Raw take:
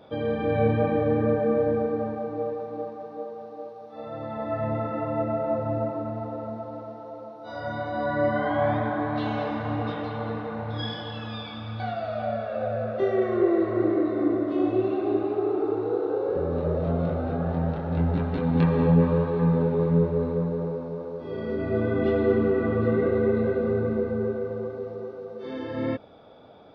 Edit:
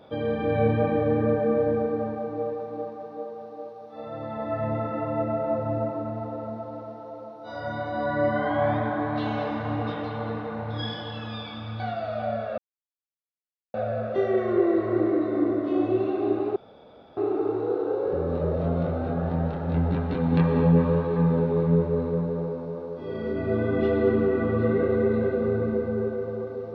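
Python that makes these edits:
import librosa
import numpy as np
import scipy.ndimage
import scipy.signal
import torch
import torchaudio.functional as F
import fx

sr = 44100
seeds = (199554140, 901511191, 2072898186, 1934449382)

y = fx.edit(x, sr, fx.insert_silence(at_s=12.58, length_s=1.16),
    fx.insert_room_tone(at_s=15.4, length_s=0.61), tone=tone)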